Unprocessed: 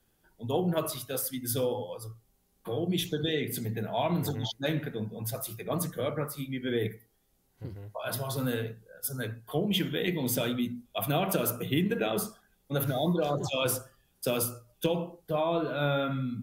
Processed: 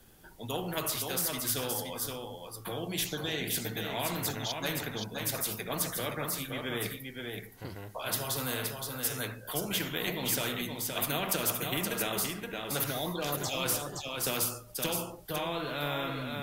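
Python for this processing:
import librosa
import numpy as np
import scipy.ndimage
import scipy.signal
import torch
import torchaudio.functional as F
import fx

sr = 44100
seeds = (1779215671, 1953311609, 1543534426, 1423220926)

y = x + 10.0 ** (-9.0 / 20.0) * np.pad(x, (int(521 * sr / 1000.0), 0))[:len(x)]
y = fx.spectral_comp(y, sr, ratio=2.0)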